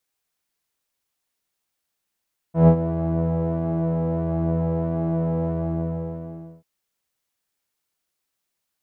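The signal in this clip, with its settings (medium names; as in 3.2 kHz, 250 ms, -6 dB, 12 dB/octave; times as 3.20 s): synth patch with pulse-width modulation E3, interval -12 st, oscillator 2 level -3.5 dB, filter lowpass, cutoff 540 Hz, Q 1.7, filter envelope 0.5 oct, filter decay 0.10 s, attack 135 ms, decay 0.08 s, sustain -12.5 dB, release 1.18 s, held 2.91 s, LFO 1.5 Hz, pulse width 40%, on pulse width 5%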